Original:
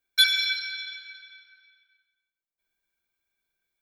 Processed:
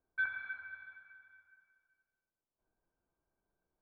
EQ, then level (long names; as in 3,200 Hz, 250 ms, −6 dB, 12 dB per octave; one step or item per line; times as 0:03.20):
low-pass filter 1,100 Hz 24 dB per octave
high-frequency loss of the air 390 metres
+8.5 dB